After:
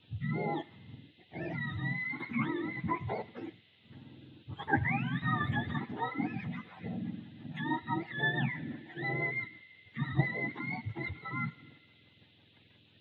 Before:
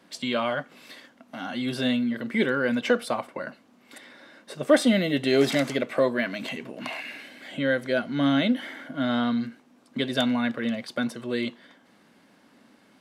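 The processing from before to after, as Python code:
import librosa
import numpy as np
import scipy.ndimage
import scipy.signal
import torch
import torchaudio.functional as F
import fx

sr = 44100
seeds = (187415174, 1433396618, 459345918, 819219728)

p1 = fx.octave_mirror(x, sr, pivot_hz=700.0)
p2 = fx.notch(p1, sr, hz=4100.0, q=12.0)
p3 = fx.level_steps(p2, sr, step_db=19)
p4 = p2 + (p3 * librosa.db_to_amplitude(-1.0))
p5 = fx.rotary_switch(p4, sr, hz=1.2, then_hz=6.0, switch_at_s=4.86)
p6 = fx.dmg_noise_band(p5, sr, seeds[0], low_hz=2500.0, high_hz=3900.0, level_db=-60.0)
p7 = p6 + fx.echo_banded(p6, sr, ms=80, feedback_pct=83, hz=2300.0, wet_db=-21, dry=0)
y = p7 * librosa.db_to_amplitude(-7.5)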